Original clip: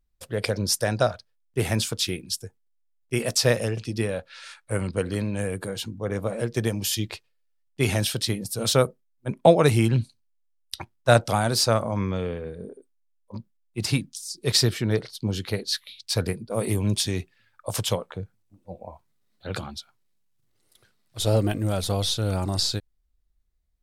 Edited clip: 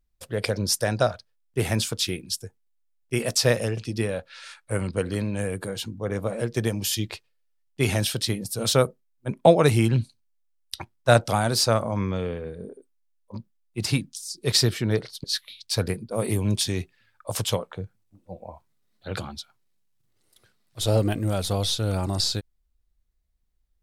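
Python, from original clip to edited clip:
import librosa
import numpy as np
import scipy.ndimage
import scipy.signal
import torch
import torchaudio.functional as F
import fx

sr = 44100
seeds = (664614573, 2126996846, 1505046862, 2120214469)

y = fx.edit(x, sr, fx.cut(start_s=15.24, length_s=0.39), tone=tone)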